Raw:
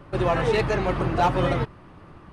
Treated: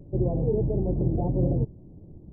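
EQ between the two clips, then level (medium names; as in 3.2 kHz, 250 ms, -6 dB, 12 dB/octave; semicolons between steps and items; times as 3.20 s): Gaussian low-pass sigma 19 samples; +2.5 dB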